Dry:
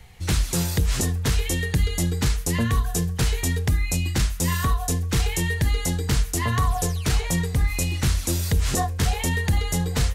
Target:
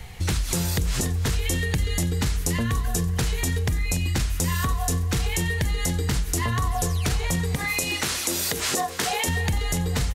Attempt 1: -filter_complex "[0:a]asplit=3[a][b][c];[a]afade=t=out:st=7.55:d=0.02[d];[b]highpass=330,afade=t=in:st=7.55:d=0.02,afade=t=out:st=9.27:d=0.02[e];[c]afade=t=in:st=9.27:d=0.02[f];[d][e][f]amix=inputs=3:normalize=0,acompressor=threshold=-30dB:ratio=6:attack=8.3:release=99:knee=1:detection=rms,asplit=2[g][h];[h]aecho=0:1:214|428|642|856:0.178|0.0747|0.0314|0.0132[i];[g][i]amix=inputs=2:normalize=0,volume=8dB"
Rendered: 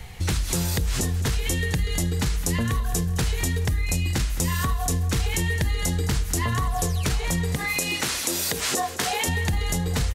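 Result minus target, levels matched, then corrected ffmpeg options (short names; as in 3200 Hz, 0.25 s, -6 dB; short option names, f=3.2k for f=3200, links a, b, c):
echo 74 ms early
-filter_complex "[0:a]asplit=3[a][b][c];[a]afade=t=out:st=7.55:d=0.02[d];[b]highpass=330,afade=t=in:st=7.55:d=0.02,afade=t=out:st=9.27:d=0.02[e];[c]afade=t=in:st=9.27:d=0.02[f];[d][e][f]amix=inputs=3:normalize=0,acompressor=threshold=-30dB:ratio=6:attack=8.3:release=99:knee=1:detection=rms,asplit=2[g][h];[h]aecho=0:1:288|576|864|1152:0.178|0.0747|0.0314|0.0132[i];[g][i]amix=inputs=2:normalize=0,volume=8dB"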